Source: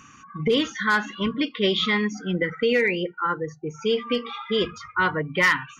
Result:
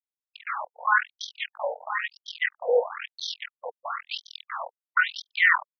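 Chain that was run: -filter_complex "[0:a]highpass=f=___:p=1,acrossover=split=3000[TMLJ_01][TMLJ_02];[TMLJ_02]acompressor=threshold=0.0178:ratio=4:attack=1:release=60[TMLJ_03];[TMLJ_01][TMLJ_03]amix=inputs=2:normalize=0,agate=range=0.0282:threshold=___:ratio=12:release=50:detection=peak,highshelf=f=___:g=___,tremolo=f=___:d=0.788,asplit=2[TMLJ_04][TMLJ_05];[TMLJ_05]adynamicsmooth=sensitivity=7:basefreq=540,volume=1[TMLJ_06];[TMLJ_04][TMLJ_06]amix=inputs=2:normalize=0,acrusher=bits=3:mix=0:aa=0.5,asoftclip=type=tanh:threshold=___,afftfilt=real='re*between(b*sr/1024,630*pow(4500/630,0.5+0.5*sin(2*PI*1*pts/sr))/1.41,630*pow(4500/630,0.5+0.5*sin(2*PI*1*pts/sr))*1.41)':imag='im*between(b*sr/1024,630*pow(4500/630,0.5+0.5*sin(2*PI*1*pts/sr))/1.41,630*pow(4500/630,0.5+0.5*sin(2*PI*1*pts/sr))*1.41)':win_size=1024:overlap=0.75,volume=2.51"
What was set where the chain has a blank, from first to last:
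98, 0.00891, 5900, -5, 42, 0.0891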